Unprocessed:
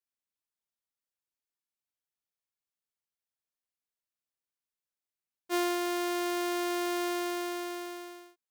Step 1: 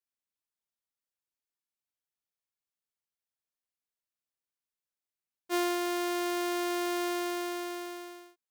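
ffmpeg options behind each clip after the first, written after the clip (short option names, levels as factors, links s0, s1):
-af anull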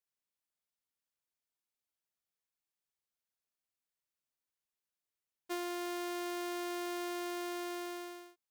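-af "acompressor=threshold=0.0158:ratio=6,volume=0.891"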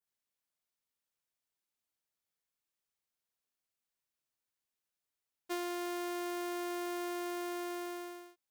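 -af "adynamicequalizer=threshold=0.00141:dfrequency=4000:dqfactor=0.79:tfrequency=4000:tqfactor=0.79:attack=5:release=100:ratio=0.375:range=2:mode=cutabove:tftype=bell,volume=1.12"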